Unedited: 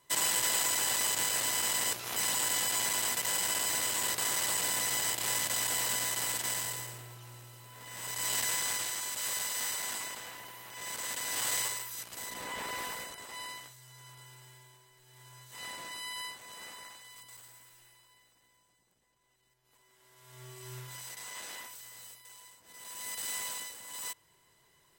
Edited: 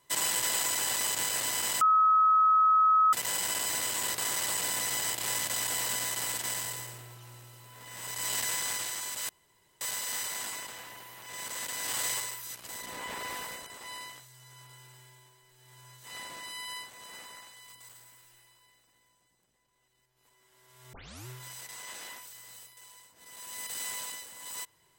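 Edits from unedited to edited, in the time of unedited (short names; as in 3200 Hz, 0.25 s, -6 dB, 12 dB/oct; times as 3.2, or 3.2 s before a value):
1.81–3.13 bleep 1280 Hz -19 dBFS
9.29 insert room tone 0.52 s
20.41 tape start 0.34 s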